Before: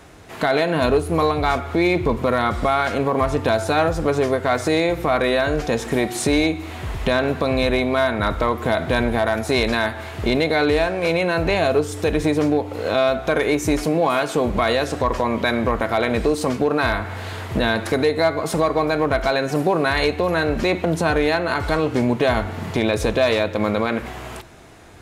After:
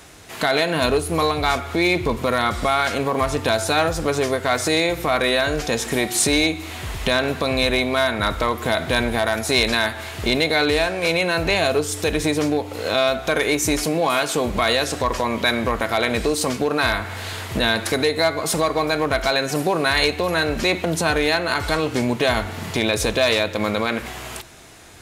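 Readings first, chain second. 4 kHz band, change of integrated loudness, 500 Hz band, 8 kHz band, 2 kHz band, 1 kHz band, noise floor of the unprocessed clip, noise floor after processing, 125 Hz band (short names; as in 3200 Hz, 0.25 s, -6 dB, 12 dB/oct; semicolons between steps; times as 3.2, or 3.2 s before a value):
+6.0 dB, 0.0 dB, -2.0 dB, +8.0 dB, +2.0 dB, -0.5 dB, -33 dBFS, -34 dBFS, -2.5 dB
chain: high shelf 2300 Hz +11.5 dB; gain -2.5 dB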